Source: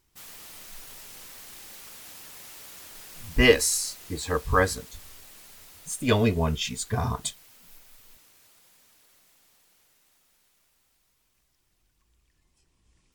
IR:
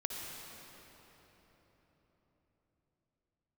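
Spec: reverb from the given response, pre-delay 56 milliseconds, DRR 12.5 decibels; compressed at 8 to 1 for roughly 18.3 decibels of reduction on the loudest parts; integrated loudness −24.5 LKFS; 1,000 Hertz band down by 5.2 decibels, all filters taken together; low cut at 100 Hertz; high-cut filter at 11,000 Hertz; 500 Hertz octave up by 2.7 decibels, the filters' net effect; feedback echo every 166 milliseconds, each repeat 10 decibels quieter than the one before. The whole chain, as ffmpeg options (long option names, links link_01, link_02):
-filter_complex "[0:a]highpass=100,lowpass=11000,equalizer=frequency=500:width_type=o:gain=4.5,equalizer=frequency=1000:width_type=o:gain=-8,acompressor=threshold=-29dB:ratio=8,aecho=1:1:166|332|498|664:0.316|0.101|0.0324|0.0104,asplit=2[link_01][link_02];[1:a]atrim=start_sample=2205,adelay=56[link_03];[link_02][link_03]afir=irnorm=-1:irlink=0,volume=-14.5dB[link_04];[link_01][link_04]amix=inputs=2:normalize=0,volume=12dB"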